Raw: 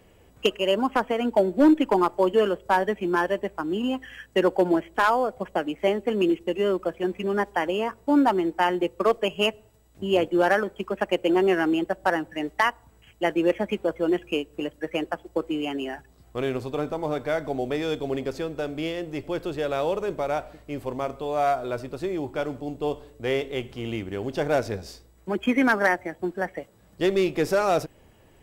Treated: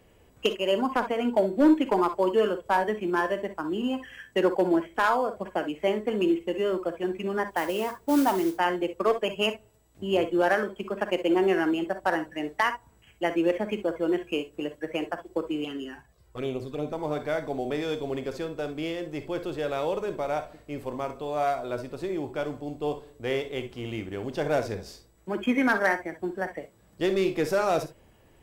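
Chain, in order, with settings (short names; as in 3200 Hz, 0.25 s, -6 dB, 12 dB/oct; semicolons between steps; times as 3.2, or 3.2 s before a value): 7.5–8.56 modulation noise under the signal 18 dB; 15.64–16.93 envelope flanger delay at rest 2.5 ms, full sweep at -23 dBFS; non-linear reverb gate 80 ms rising, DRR 9 dB; gain -3 dB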